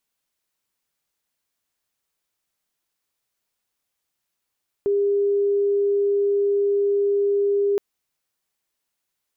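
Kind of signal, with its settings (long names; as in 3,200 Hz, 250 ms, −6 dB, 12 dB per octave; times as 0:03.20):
tone sine 403 Hz −17 dBFS 2.92 s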